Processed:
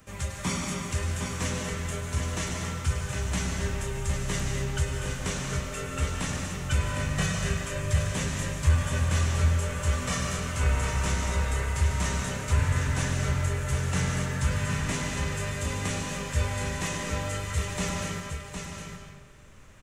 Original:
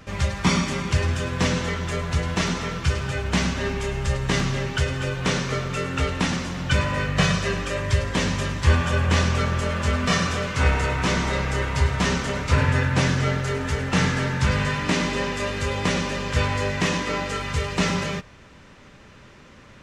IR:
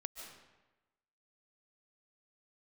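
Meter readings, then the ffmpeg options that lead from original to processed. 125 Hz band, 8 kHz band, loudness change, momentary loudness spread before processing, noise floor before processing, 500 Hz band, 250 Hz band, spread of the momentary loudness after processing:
−4.0 dB, 0.0 dB, −5.5 dB, 5 LU, −48 dBFS, −8.5 dB, −8.0 dB, 6 LU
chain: -filter_complex "[0:a]aecho=1:1:760:0.447,acrossover=split=300|890|2500[link_01][link_02][link_03][link_04];[link_04]aexciter=amount=5.9:drive=2.3:freq=6700[link_05];[link_01][link_02][link_03][link_05]amix=inputs=4:normalize=0,asoftclip=type=tanh:threshold=-8dB,asubboost=boost=2.5:cutoff=130[link_06];[1:a]atrim=start_sample=2205[link_07];[link_06][link_07]afir=irnorm=-1:irlink=0,volume=-5.5dB"

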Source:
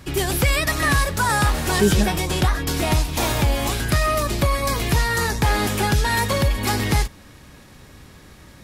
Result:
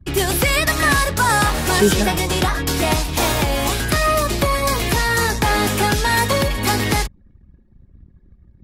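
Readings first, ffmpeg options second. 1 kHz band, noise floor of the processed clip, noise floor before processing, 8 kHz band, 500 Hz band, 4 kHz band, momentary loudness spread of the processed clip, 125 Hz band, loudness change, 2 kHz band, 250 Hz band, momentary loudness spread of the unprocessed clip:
+4.0 dB, −51 dBFS, −46 dBFS, +4.0 dB, +4.0 dB, +4.0 dB, 3 LU, −0.5 dB, +3.0 dB, +4.0 dB, +2.0 dB, 3 LU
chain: -filter_complex "[0:a]anlmdn=2.51,acrossover=split=230[link_01][link_02];[link_01]asoftclip=type=tanh:threshold=-23.5dB[link_03];[link_03][link_02]amix=inputs=2:normalize=0,volume=4dB"

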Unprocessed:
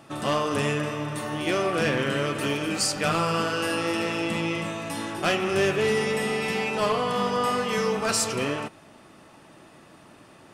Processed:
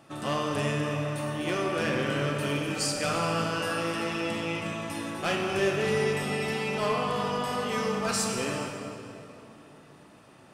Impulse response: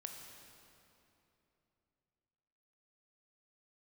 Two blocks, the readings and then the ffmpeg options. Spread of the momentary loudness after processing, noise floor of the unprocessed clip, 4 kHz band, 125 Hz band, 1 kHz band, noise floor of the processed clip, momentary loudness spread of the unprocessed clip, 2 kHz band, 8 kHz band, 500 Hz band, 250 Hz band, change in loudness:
7 LU, −52 dBFS, −3.5 dB, −1.0 dB, −3.5 dB, −53 dBFS, 6 LU, −3.5 dB, −4.0 dB, −3.5 dB, −3.0 dB, −3.5 dB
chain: -filter_complex "[1:a]atrim=start_sample=2205[link_01];[0:a][link_01]afir=irnorm=-1:irlink=0"

